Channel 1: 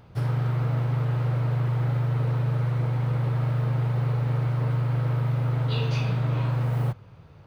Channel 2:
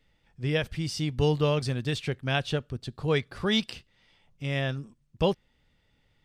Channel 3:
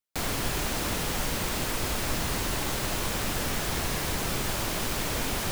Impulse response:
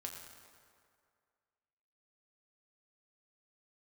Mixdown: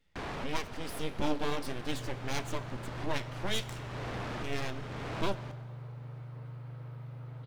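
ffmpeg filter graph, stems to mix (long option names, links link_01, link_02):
-filter_complex "[0:a]adelay=1750,volume=-19.5dB[link_01];[1:a]flanger=delay=9.6:depth=7.8:regen=58:speed=1.7:shape=triangular,aeval=exprs='abs(val(0))':channel_layout=same,volume=-3dB,asplit=3[link_02][link_03][link_04];[link_03]volume=-6dB[link_05];[2:a]lowpass=frequency=1100:poles=1,aemphasis=mode=reproduction:type=50fm,aeval=exprs='0.119*sin(PI/2*5.62*val(0)/0.119)':channel_layout=same,volume=-18dB,asplit=2[link_06][link_07];[link_07]volume=-12.5dB[link_08];[link_04]apad=whole_len=243162[link_09];[link_06][link_09]sidechaincompress=threshold=-45dB:ratio=8:attack=48:release=455[link_10];[3:a]atrim=start_sample=2205[link_11];[link_05][link_08]amix=inputs=2:normalize=0[link_12];[link_12][link_11]afir=irnorm=-1:irlink=0[link_13];[link_01][link_02][link_10][link_13]amix=inputs=4:normalize=0"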